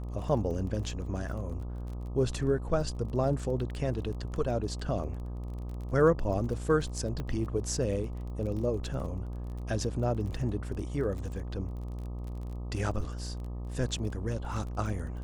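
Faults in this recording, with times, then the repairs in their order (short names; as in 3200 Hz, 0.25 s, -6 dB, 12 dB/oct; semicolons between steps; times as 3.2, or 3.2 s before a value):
buzz 60 Hz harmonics 21 -37 dBFS
crackle 25/s -39 dBFS
7.2 pop -24 dBFS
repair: de-click; de-hum 60 Hz, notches 21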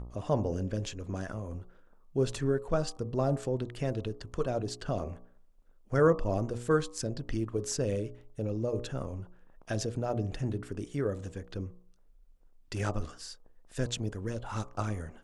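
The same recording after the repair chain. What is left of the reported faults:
7.2 pop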